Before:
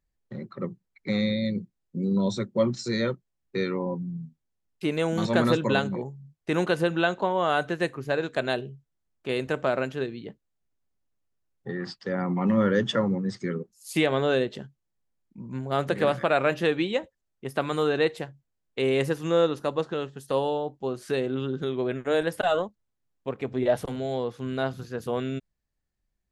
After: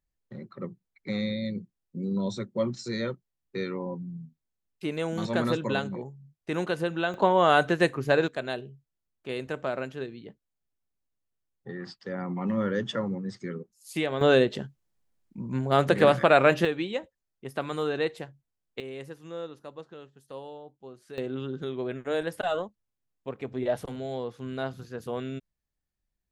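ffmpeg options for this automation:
ffmpeg -i in.wav -af "asetnsamples=nb_out_samples=441:pad=0,asendcmd='7.14 volume volume 4dB;8.28 volume volume -5.5dB;14.21 volume volume 4dB;16.65 volume volume -4.5dB;18.8 volume volume -15.5dB;21.18 volume volume -4.5dB',volume=-4.5dB" out.wav

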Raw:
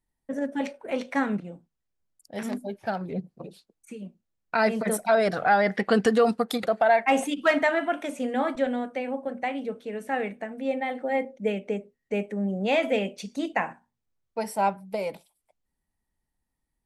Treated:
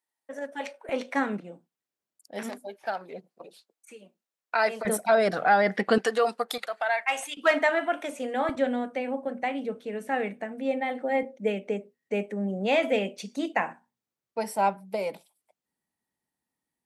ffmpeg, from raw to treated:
ffmpeg -i in.wav -af "asetnsamples=nb_out_samples=441:pad=0,asendcmd='0.89 highpass f 250;2.5 highpass f 530;4.85 highpass f 170;5.98 highpass f 530;6.58 highpass f 1100;7.37 highpass f 340;8.49 highpass f 87;11.23 highpass f 180',highpass=590" out.wav

